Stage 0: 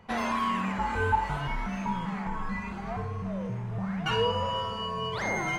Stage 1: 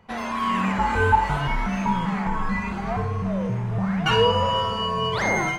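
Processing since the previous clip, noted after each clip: level rider gain up to 9 dB; trim -1 dB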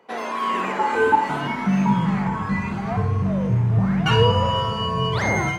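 octave divider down 2 oct, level -1 dB; high-pass sweep 390 Hz -> 110 Hz, 0.86–2.29 s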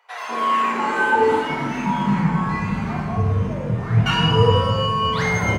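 bands offset in time highs, lows 200 ms, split 760 Hz; reverberation RT60 0.95 s, pre-delay 5 ms, DRR 1.5 dB

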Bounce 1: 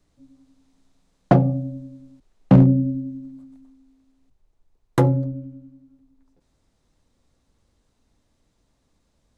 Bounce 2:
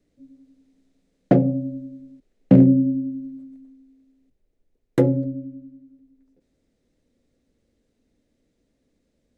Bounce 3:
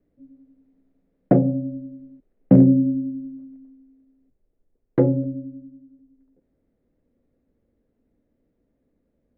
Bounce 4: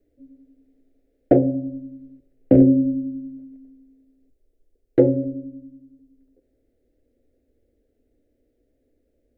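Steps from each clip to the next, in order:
graphic EQ 250/500/1000/2000 Hz +9/+10/-10/+6 dB; trim -7 dB
low-pass 1.4 kHz 12 dB/octave
static phaser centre 430 Hz, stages 4; on a send at -20.5 dB: reverberation RT60 0.80 s, pre-delay 5 ms; on the sum: trim +5 dB

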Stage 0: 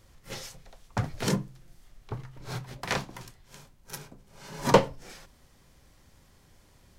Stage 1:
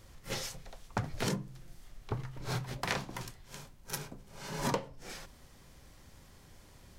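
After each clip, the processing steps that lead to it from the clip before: compression 12:1, threshold -32 dBFS, peak gain reduction 20 dB; trim +2.5 dB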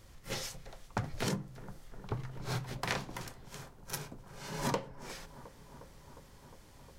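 bucket-brigade echo 357 ms, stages 4096, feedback 79%, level -17 dB; trim -1 dB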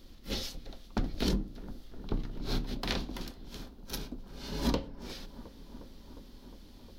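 octave divider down 2 oct, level +3 dB; graphic EQ 125/250/500/1000/2000/4000/8000 Hz -11/+9/-3/-6/-7/+8/-12 dB; trim +3 dB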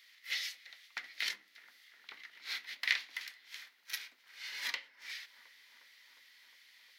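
resonant high-pass 2 kHz, resonance Q 7.3; trim -2.5 dB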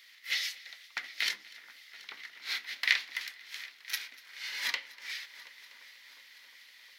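multi-head delay 243 ms, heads first and third, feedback 69%, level -22 dB; trim +5 dB

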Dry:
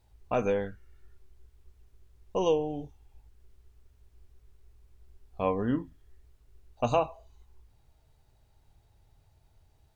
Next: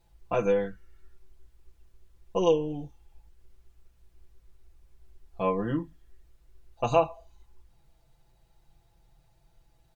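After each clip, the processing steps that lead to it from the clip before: comb 5.9 ms, depth 97%; trim -1.5 dB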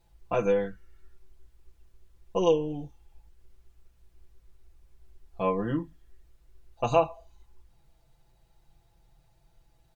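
no audible change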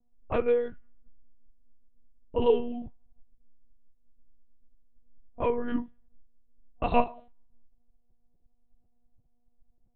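level-controlled noise filter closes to 360 Hz, open at -23.5 dBFS; frequency shift -29 Hz; monotone LPC vocoder at 8 kHz 240 Hz

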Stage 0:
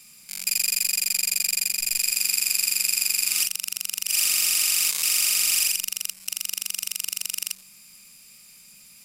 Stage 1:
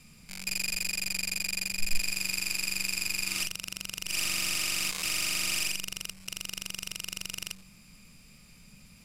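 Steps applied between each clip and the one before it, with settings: RIAA curve playback; trim +1 dB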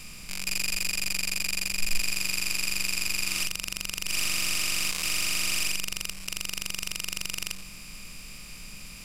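spectral levelling over time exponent 0.6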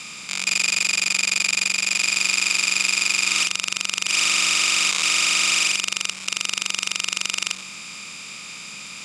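cabinet simulation 210–9200 Hz, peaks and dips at 900 Hz +4 dB, 1.3 kHz +8 dB, 2.3 kHz +5 dB, 3.6 kHz +9 dB, 6.8 kHz +7 dB; trim +5.5 dB

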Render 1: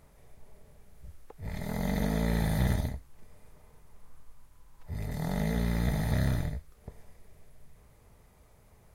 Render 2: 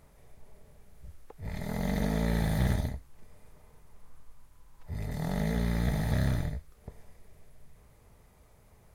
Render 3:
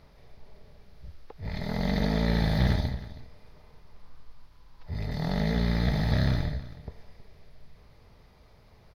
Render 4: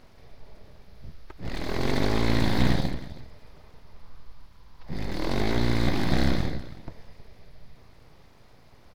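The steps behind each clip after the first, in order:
self-modulated delay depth 0.11 ms
resonant high shelf 6.1 kHz -9.5 dB, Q 3; delay 320 ms -16.5 dB; trim +3 dB
full-wave rectifier; trim +4 dB

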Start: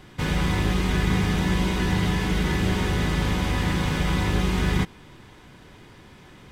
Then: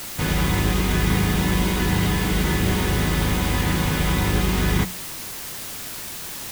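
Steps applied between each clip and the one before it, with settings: hum notches 60/120/180 Hz; word length cut 6-bit, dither triangular; trim +2.5 dB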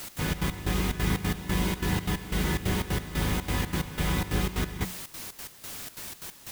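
trance gate "x.xx.x..xx" 181 bpm -12 dB; trim -6 dB

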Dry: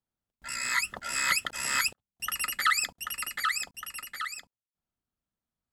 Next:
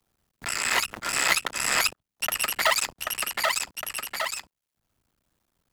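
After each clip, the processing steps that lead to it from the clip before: cycle switcher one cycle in 2, muted; three bands compressed up and down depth 40%; trim +7 dB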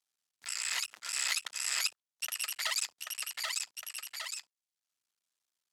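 band-pass filter 5.9 kHz, Q 0.75; trim -5 dB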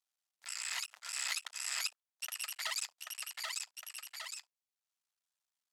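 resonant low shelf 480 Hz -12 dB, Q 1.5; trim -5 dB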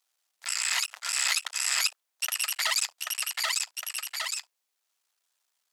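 high-pass 370 Hz 12 dB/octave; in parallel at 0 dB: peak limiter -29.5 dBFS, peak gain reduction 8 dB; on the sum: trim +6.5 dB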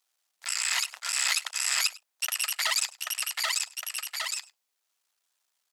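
delay 101 ms -21.5 dB

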